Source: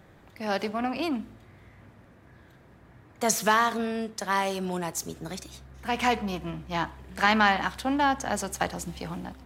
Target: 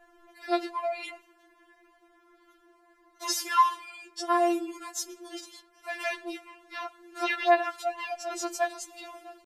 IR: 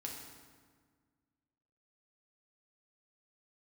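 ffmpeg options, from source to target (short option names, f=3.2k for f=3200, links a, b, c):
-af "adynamicequalizer=threshold=0.00794:dfrequency=360:dqfactor=2.9:tfrequency=360:tqfactor=2.9:attack=5:release=100:ratio=0.375:range=2:mode=cutabove:tftype=bell,asetrate=39289,aresample=44100,atempo=1.12246,afftfilt=real='re*4*eq(mod(b,16),0)':imag='im*4*eq(mod(b,16),0)':win_size=2048:overlap=0.75"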